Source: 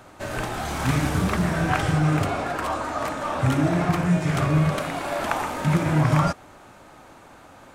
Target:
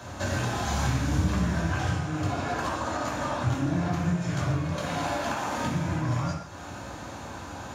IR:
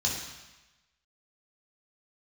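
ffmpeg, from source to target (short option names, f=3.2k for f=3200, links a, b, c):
-filter_complex "[0:a]acompressor=threshold=-34dB:ratio=10[a];[1:a]atrim=start_sample=2205,afade=t=out:st=0.23:d=0.01,atrim=end_sample=10584[b];[a][b]afir=irnorm=-1:irlink=0"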